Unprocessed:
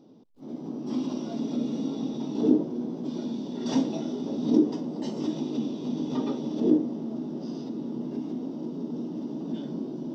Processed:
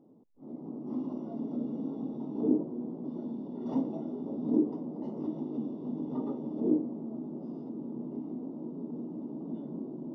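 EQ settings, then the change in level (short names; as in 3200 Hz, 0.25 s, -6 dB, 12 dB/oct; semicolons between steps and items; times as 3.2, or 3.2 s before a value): polynomial smoothing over 65 samples; -5.5 dB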